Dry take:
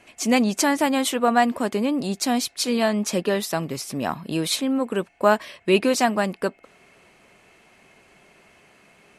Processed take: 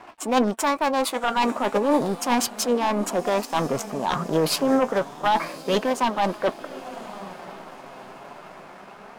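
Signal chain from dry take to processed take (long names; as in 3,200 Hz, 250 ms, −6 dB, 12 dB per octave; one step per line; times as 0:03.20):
adaptive Wiener filter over 15 samples
high-pass filter 51 Hz
parametric band 920 Hz +12 dB 2 octaves
reversed playback
downward compressor 5 to 1, threshold −26 dBFS, peak gain reduction 21 dB
reversed playback
sine wavefolder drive 8 dB, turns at −12 dBFS
on a send: feedback delay with all-pass diffusion 1,046 ms, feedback 50%, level −15 dB
on the sum: dead-zone distortion −48 dBFS
flanger 0.31 Hz, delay 2.6 ms, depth 5.2 ms, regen +64%
formants moved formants +3 semitones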